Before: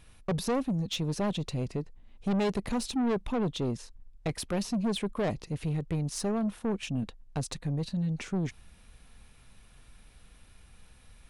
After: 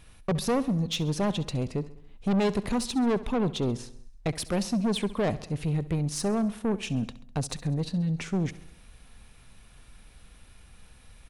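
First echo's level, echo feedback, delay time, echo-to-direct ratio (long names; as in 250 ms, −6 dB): −17.5 dB, 58%, 67 ms, −16.0 dB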